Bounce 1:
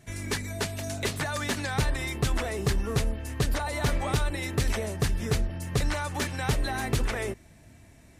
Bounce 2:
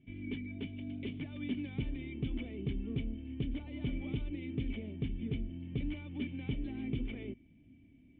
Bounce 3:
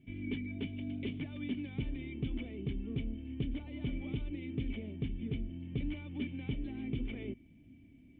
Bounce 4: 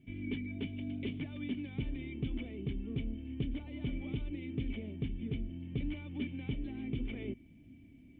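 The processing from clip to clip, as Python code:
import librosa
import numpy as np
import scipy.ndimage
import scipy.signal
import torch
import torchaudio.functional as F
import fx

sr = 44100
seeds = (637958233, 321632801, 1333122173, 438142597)

y1 = fx.formant_cascade(x, sr, vowel='i')
y1 = y1 * librosa.db_to_amplitude(1.5)
y2 = fx.rider(y1, sr, range_db=10, speed_s=0.5)
y3 = fx.rider(y2, sr, range_db=10, speed_s=0.5)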